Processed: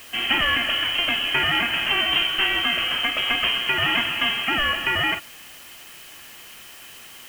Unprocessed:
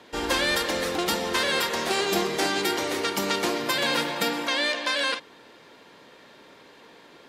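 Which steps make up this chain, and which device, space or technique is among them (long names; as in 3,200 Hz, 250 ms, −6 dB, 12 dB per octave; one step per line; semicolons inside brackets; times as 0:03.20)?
scrambled radio voice (band-pass filter 320–3,000 Hz; voice inversion scrambler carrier 3,500 Hz; white noise bed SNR 21 dB)
level +5.5 dB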